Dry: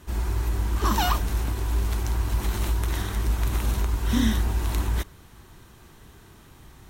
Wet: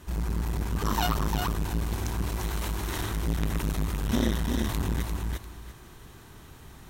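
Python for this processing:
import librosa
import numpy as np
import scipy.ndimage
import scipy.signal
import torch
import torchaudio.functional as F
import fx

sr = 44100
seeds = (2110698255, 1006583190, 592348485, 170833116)

y = fx.low_shelf(x, sr, hz=110.0, db=-8.5, at=(2.32, 2.98))
y = fx.echo_feedback(y, sr, ms=347, feedback_pct=18, wet_db=-4)
y = fx.transformer_sat(y, sr, knee_hz=340.0)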